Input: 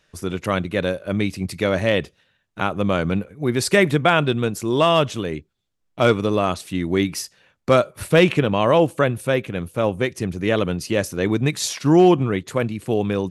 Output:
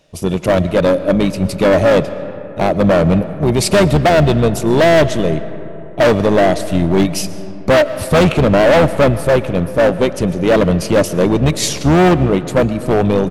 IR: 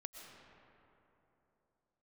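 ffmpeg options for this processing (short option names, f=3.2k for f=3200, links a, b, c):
-filter_complex "[0:a]equalizer=f=160:t=o:w=0.67:g=5,equalizer=f=630:t=o:w=0.67:g=11,equalizer=f=1.6k:t=o:w=0.67:g=-11,asplit=2[a][b];[b]asetrate=22050,aresample=44100,atempo=2,volume=-10dB[c];[a][c]amix=inputs=2:normalize=0,volume=14dB,asoftclip=hard,volume=-14dB,asplit=2[d][e];[1:a]atrim=start_sample=2205[f];[e][f]afir=irnorm=-1:irlink=0,volume=-2.5dB[g];[d][g]amix=inputs=2:normalize=0,volume=3.5dB"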